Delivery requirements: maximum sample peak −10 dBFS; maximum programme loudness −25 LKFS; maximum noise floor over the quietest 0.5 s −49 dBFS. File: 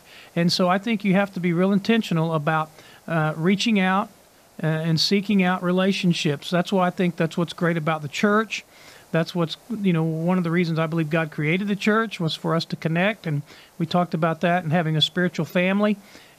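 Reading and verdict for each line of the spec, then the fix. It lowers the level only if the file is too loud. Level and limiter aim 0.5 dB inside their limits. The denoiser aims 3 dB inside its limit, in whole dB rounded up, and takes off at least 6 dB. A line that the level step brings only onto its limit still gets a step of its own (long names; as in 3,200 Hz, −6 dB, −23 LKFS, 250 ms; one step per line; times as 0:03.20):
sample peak −6.5 dBFS: out of spec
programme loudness −22.5 LKFS: out of spec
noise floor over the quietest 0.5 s −53 dBFS: in spec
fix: level −3 dB
brickwall limiter −10.5 dBFS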